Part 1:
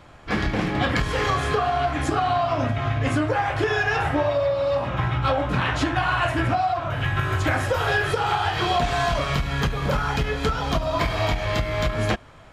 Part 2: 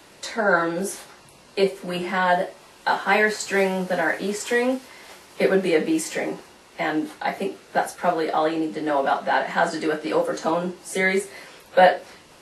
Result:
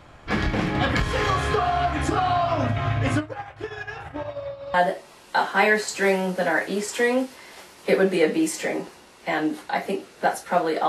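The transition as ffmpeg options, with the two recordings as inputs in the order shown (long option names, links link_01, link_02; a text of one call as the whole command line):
ffmpeg -i cue0.wav -i cue1.wav -filter_complex "[0:a]asplit=3[link_01][link_02][link_03];[link_01]afade=type=out:start_time=3.19:duration=0.02[link_04];[link_02]agate=range=-33dB:threshold=-14dB:ratio=3:release=100:detection=peak,afade=type=in:start_time=3.19:duration=0.02,afade=type=out:start_time=4.74:duration=0.02[link_05];[link_03]afade=type=in:start_time=4.74:duration=0.02[link_06];[link_04][link_05][link_06]amix=inputs=3:normalize=0,apad=whole_dur=10.88,atrim=end=10.88,atrim=end=4.742[link_07];[1:a]atrim=start=2.258:end=8.4[link_08];[link_07][link_08]acrossfade=duration=0.004:curve1=hsin:curve2=hsin" out.wav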